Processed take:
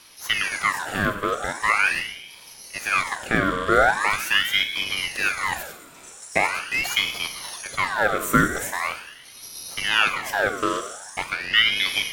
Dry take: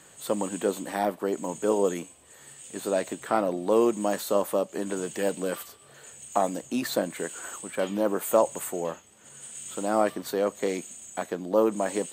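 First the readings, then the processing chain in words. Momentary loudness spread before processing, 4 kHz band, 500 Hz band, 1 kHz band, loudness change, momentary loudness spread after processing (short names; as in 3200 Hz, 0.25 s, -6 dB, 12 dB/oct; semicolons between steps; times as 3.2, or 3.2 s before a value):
14 LU, +19.0 dB, -4.5 dB, +6.5 dB, +5.5 dB, 17 LU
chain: rattling part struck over -38 dBFS, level -28 dBFS; Schroeder reverb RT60 1.2 s, combs from 31 ms, DRR 7.5 dB; ring modulator with a swept carrier 1800 Hz, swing 55%, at 0.42 Hz; gain +6 dB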